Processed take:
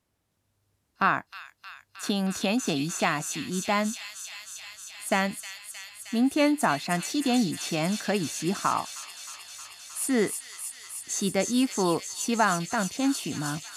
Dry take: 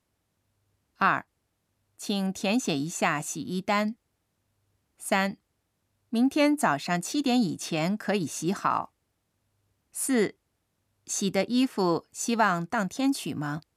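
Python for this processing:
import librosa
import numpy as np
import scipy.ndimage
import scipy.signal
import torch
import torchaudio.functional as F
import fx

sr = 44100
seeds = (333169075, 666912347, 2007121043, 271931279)

p1 = x + fx.echo_wet_highpass(x, sr, ms=312, feedback_pct=83, hz=3500.0, wet_db=-3.5, dry=0)
y = fx.band_squash(p1, sr, depth_pct=70, at=(2.03, 3.01))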